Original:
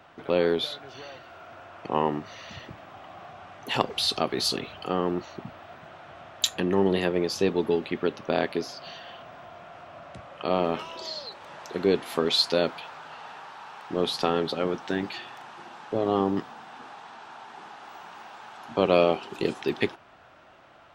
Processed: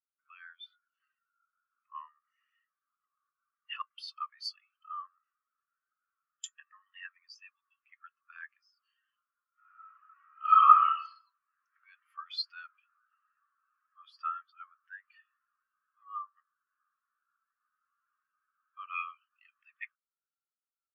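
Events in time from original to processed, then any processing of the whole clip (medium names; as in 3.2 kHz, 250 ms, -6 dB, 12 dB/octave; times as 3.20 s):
9.52–11.02 s: reverb throw, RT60 1.2 s, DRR -10 dB
whole clip: steep high-pass 1.1 kHz 72 dB/octave; peaking EQ 3.9 kHz -14.5 dB 0.3 oct; spectral contrast expander 2.5:1; trim +3.5 dB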